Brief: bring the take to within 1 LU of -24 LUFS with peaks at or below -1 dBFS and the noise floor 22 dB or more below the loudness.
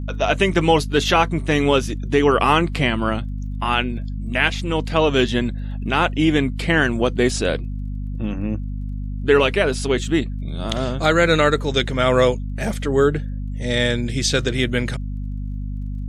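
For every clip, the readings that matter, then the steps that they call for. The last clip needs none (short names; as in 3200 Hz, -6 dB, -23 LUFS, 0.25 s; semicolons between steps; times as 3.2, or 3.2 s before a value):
ticks 25/s; hum 50 Hz; harmonics up to 250 Hz; hum level -24 dBFS; loudness -20.0 LUFS; peak -2.5 dBFS; loudness target -24.0 LUFS
-> de-click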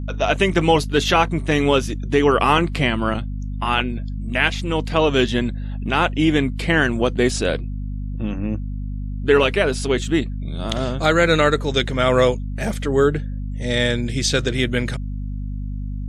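ticks 0.062/s; hum 50 Hz; harmonics up to 250 Hz; hum level -24 dBFS
-> de-hum 50 Hz, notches 5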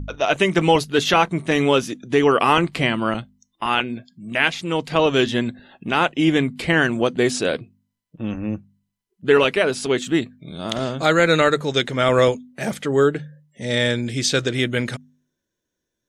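hum none; loudness -20.0 LUFS; peak -2.5 dBFS; loudness target -24.0 LUFS
-> gain -4 dB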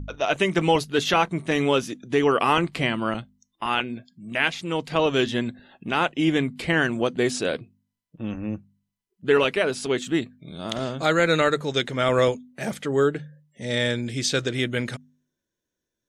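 loudness -24.0 LUFS; peak -6.5 dBFS; noise floor -84 dBFS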